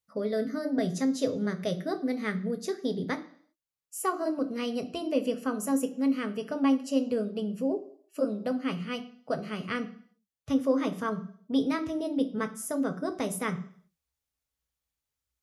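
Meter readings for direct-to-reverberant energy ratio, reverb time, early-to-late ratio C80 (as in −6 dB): 6.0 dB, 0.55 s, 18.5 dB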